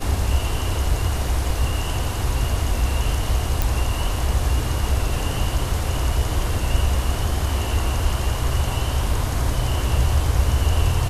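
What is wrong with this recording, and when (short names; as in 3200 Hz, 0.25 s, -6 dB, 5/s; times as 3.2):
3.62 pop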